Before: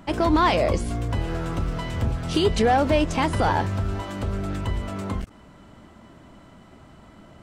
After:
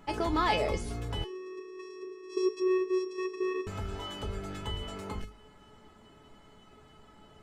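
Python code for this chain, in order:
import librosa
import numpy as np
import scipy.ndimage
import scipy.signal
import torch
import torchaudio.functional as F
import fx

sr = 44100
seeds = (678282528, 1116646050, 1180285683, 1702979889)

y = fx.hum_notches(x, sr, base_hz=50, count=6)
y = fx.vocoder(y, sr, bands=4, carrier='square', carrier_hz=371.0, at=(1.24, 3.67))
y = fx.comb_fb(y, sr, f0_hz=430.0, decay_s=0.2, harmonics='all', damping=0.0, mix_pct=90)
y = y * 10.0 ** (7.0 / 20.0)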